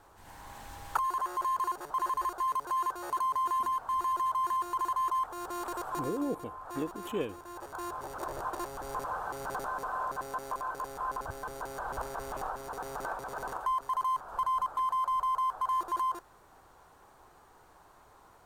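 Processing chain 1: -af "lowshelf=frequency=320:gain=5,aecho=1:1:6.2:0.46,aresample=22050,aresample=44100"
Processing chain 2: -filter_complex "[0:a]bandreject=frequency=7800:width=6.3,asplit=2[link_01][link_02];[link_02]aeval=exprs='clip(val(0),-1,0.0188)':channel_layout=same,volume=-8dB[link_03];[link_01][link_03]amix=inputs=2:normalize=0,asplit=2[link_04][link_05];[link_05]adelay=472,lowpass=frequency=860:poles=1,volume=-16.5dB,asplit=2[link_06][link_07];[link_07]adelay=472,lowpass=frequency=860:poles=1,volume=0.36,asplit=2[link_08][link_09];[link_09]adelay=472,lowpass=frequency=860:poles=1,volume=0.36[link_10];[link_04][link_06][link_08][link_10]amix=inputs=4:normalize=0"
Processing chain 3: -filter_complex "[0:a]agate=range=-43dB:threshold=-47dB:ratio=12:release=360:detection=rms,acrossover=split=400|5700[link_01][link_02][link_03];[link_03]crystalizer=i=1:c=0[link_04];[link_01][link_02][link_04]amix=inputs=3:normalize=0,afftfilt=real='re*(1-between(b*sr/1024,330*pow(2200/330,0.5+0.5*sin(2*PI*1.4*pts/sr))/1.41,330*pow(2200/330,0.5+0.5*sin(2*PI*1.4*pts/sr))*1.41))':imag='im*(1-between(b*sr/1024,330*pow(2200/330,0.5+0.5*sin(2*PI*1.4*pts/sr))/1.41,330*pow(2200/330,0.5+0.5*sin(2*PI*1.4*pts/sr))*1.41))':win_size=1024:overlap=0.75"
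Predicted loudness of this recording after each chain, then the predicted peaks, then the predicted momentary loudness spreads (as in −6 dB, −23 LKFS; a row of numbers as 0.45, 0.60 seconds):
−35.5, −31.0, −35.0 LKFS; −15.0, −15.5, −15.5 dBFS; 6, 9, 9 LU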